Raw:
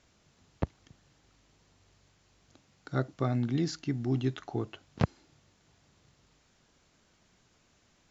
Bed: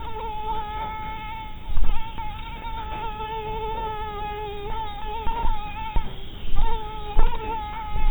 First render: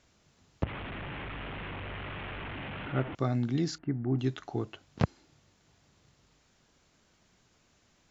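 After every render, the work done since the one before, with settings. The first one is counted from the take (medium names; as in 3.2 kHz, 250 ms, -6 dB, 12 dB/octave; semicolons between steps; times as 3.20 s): 0.63–3.15 s: one-bit delta coder 16 kbps, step -33 dBFS; 3.78–4.19 s: low-pass 1.8 kHz 24 dB/octave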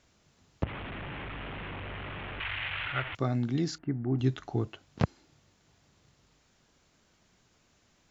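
2.40–3.17 s: FFT filter 110 Hz 0 dB, 200 Hz -19 dB, 2 kHz +10 dB; 4.20–4.68 s: bass shelf 140 Hz +9 dB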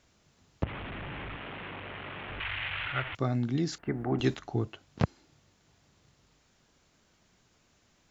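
1.36–2.29 s: high-pass 180 Hz 6 dB/octave; 3.71–4.38 s: spectral peaks clipped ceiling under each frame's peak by 17 dB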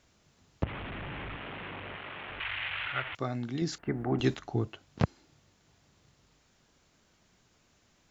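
1.96–3.62 s: bass shelf 320 Hz -8 dB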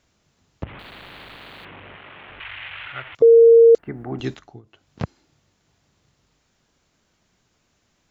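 0.79–1.65 s: spectrum-flattening compressor 4:1; 3.22–3.75 s: bleep 461 Hz -6.5 dBFS; 4.36–4.89 s: dip -21.5 dB, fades 0.26 s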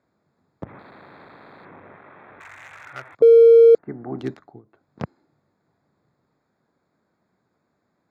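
local Wiener filter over 15 samples; high-pass 150 Hz 12 dB/octave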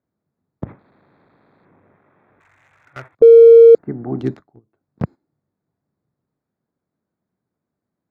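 gate -39 dBFS, range -15 dB; bass shelf 440 Hz +10 dB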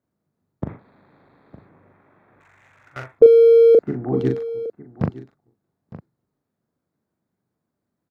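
doubling 40 ms -5 dB; delay 910 ms -16.5 dB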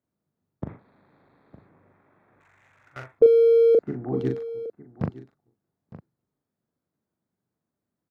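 trim -5.5 dB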